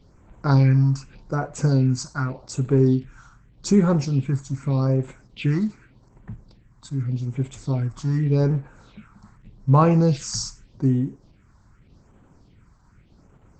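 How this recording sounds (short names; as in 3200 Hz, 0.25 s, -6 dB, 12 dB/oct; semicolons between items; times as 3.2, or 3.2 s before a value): phasing stages 4, 0.84 Hz, lowest notch 440–4900 Hz; Opus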